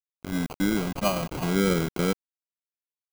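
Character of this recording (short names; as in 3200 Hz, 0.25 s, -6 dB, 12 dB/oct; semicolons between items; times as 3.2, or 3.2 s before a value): a quantiser's noise floor 6-bit, dither none; phasing stages 12, 0.65 Hz, lowest notch 370–1200 Hz; aliases and images of a low sample rate 1800 Hz, jitter 0%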